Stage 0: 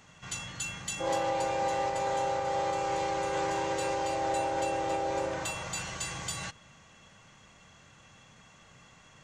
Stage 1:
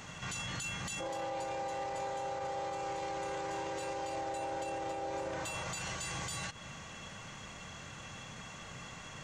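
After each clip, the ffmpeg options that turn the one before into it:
-af "acompressor=threshold=0.00708:ratio=2,alimiter=level_in=5.96:limit=0.0631:level=0:latency=1:release=69,volume=0.168,volume=2.82"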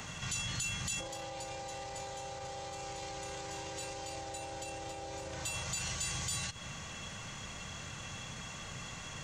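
-filter_complex "[0:a]acrossover=split=130|3000[s0][s1][s2];[s1]acompressor=threshold=0.002:ratio=2.5[s3];[s0][s3][s2]amix=inputs=3:normalize=0,volume=1.88"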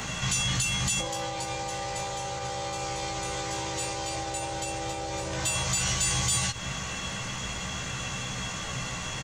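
-filter_complex "[0:a]asplit=2[s0][s1];[s1]adelay=16,volume=0.708[s2];[s0][s2]amix=inputs=2:normalize=0,asplit=2[s3][s4];[s4]asoftclip=type=tanh:threshold=0.0266,volume=0.266[s5];[s3][s5]amix=inputs=2:normalize=0,volume=2.24"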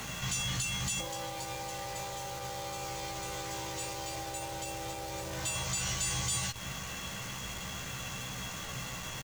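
-af "acrusher=bits=7:dc=4:mix=0:aa=0.000001,volume=0.473"

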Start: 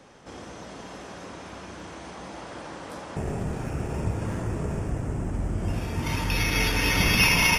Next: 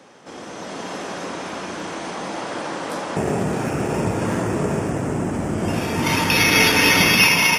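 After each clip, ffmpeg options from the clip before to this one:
-af "highpass=180,dynaudnorm=f=110:g=11:m=2.24,volume=1.68"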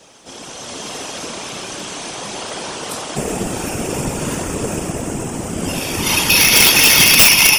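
-af "afftfilt=real='hypot(re,im)*cos(2*PI*random(0))':imag='hypot(re,im)*sin(2*PI*random(1))':win_size=512:overlap=0.75,aexciter=amount=4.1:drive=1.4:freq=2600,aeval=exprs='(mod(2*val(0)+1,2)-1)/2':c=same,volume=1.78"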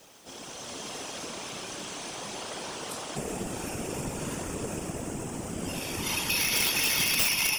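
-af "acompressor=threshold=0.0447:ratio=1.5,acrusher=bits=7:mix=0:aa=0.000001,volume=0.355"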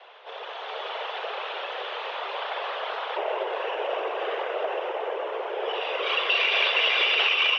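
-af "highpass=f=240:t=q:w=0.5412,highpass=f=240:t=q:w=1.307,lowpass=f=3200:t=q:w=0.5176,lowpass=f=3200:t=q:w=0.7071,lowpass=f=3200:t=q:w=1.932,afreqshift=190,volume=2.51"

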